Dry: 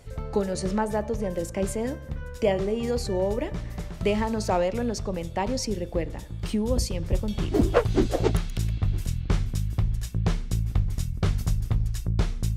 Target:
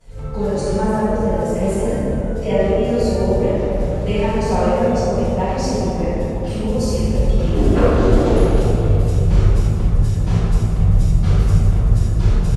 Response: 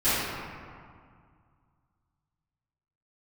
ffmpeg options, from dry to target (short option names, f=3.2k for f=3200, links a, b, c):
-filter_complex "[0:a]asplit=7[a][b][c][d][e][f][g];[b]adelay=142,afreqshift=-130,volume=-16.5dB[h];[c]adelay=284,afreqshift=-260,volume=-21.1dB[i];[d]adelay=426,afreqshift=-390,volume=-25.7dB[j];[e]adelay=568,afreqshift=-520,volume=-30.2dB[k];[f]adelay=710,afreqshift=-650,volume=-34.8dB[l];[g]adelay=852,afreqshift=-780,volume=-39.4dB[m];[a][h][i][j][k][l][m]amix=inputs=7:normalize=0[n];[1:a]atrim=start_sample=2205,asetrate=24255,aresample=44100[o];[n][o]afir=irnorm=-1:irlink=0,volume=-13dB"